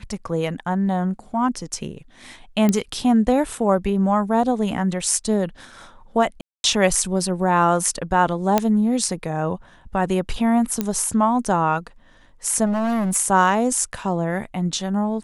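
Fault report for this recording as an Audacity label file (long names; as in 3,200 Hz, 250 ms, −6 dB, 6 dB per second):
2.690000	2.690000	click −7 dBFS
6.410000	6.640000	drop-out 231 ms
8.580000	8.580000	click −3 dBFS
10.810000	10.810000	click −8 dBFS
12.650000	13.160000	clipping −19 dBFS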